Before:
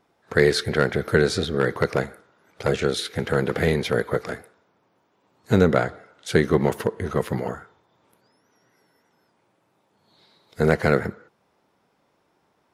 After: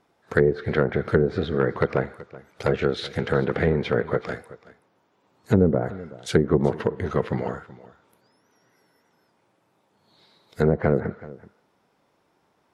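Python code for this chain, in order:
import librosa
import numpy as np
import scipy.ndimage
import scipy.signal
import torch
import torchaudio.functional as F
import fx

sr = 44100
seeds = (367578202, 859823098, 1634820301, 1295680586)

y = fx.env_lowpass_down(x, sr, base_hz=510.0, full_db=-13.5)
y = y + 10.0 ** (-19.0 / 20.0) * np.pad(y, (int(378 * sr / 1000.0), 0))[:len(y)]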